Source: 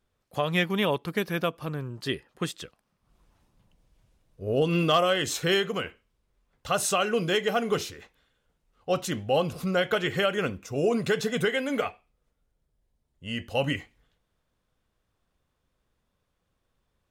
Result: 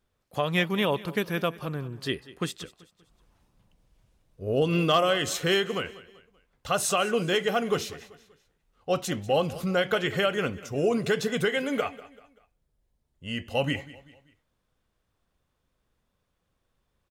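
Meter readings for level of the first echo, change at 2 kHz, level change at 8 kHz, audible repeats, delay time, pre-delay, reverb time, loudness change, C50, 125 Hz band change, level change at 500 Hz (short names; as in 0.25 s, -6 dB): -18.5 dB, 0.0 dB, 0.0 dB, 3, 0.193 s, none, none, 0.0 dB, none, 0.0 dB, 0.0 dB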